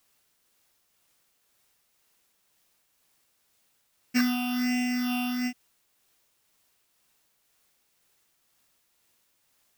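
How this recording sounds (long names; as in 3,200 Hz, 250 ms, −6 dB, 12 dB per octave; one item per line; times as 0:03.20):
a buzz of ramps at a fixed pitch in blocks of 16 samples
phaser sweep stages 6, 1.3 Hz, lowest notch 510–1,100 Hz
a quantiser's noise floor 12 bits, dither triangular
tremolo triangle 2 Hz, depth 30%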